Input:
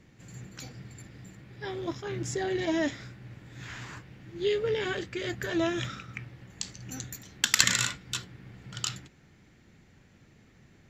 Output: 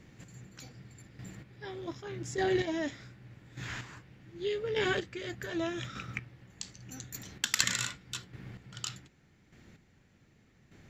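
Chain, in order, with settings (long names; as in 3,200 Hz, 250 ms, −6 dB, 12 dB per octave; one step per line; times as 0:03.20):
square-wave tremolo 0.84 Hz, depth 60%, duty 20%
level +2 dB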